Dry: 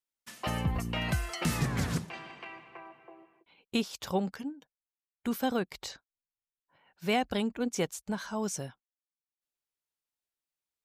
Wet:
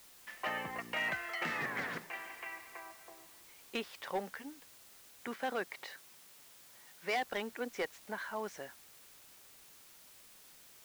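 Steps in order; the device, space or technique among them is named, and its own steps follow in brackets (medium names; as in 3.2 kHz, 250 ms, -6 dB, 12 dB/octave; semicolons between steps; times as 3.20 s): drive-through speaker (band-pass 430–2800 Hz; peaking EQ 1.9 kHz +9 dB 0.48 oct; hard clipper -26 dBFS, distortion -13 dB; white noise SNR 16 dB); 5.27–7.24 s: high-pass 86 Hz; trim -2.5 dB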